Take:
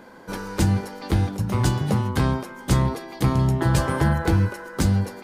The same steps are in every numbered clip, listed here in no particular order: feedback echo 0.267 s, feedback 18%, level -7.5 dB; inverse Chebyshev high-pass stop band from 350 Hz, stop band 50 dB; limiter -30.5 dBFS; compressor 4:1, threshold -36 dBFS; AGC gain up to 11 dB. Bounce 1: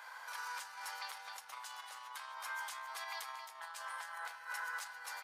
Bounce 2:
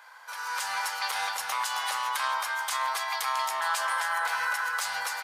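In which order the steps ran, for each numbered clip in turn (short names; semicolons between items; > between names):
limiter > feedback echo > AGC > compressor > inverse Chebyshev high-pass; inverse Chebyshev high-pass > compressor > limiter > feedback echo > AGC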